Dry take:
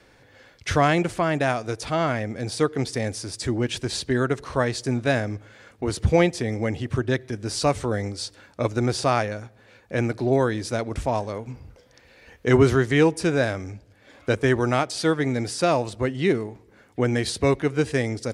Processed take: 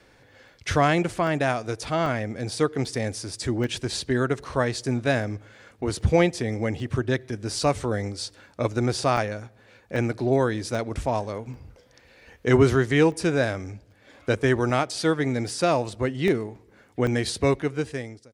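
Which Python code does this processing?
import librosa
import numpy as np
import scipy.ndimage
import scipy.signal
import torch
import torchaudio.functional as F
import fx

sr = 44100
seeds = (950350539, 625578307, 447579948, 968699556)

y = fx.fade_out_tail(x, sr, length_s=0.86)
y = fx.buffer_crackle(y, sr, first_s=0.48, period_s=0.79, block=64, kind='zero')
y = F.gain(torch.from_numpy(y), -1.0).numpy()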